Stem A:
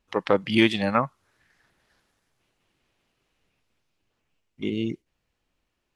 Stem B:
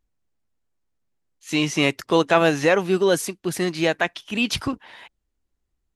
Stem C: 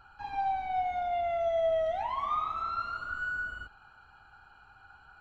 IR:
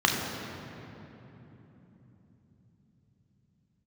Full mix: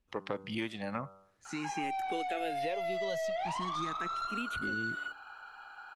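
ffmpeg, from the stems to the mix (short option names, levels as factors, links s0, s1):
-filter_complex "[0:a]lowshelf=f=390:g=7.5,bandreject=f=96.85:t=h:w=4,bandreject=f=193.7:t=h:w=4,bandreject=f=290.55:t=h:w=4,bandreject=f=387.4:t=h:w=4,bandreject=f=484.25:t=h:w=4,bandreject=f=581.1:t=h:w=4,bandreject=f=677.95:t=h:w=4,bandreject=f=774.8:t=h:w=4,bandreject=f=871.65:t=h:w=4,bandreject=f=968.5:t=h:w=4,bandreject=f=1065.35:t=h:w=4,bandreject=f=1162.2:t=h:w=4,bandreject=f=1259.05:t=h:w=4,bandreject=f=1355.9:t=h:w=4,bandreject=f=1452.75:t=h:w=4,bandreject=f=1549.6:t=h:w=4,volume=0.335[s0];[1:a]asplit=2[s1][s2];[s2]afreqshift=0.43[s3];[s1][s3]amix=inputs=2:normalize=1,volume=0.355[s4];[2:a]highpass=520,aeval=exprs='0.0841*(cos(1*acos(clip(val(0)/0.0841,-1,1)))-cos(1*PI/2))+0.0211*(cos(5*acos(clip(val(0)/0.0841,-1,1)))-cos(5*PI/2))+0.00168*(cos(6*acos(clip(val(0)/0.0841,-1,1)))-cos(6*PI/2))':c=same,adelay=1450,volume=1.06[s5];[s0][s4][s5]amix=inputs=3:normalize=0,acrossover=split=600|1800|6100[s6][s7][s8][s9];[s6]acompressor=threshold=0.0112:ratio=4[s10];[s7]acompressor=threshold=0.01:ratio=4[s11];[s8]acompressor=threshold=0.00562:ratio=4[s12];[s9]acompressor=threshold=0.00126:ratio=4[s13];[s10][s11][s12][s13]amix=inputs=4:normalize=0"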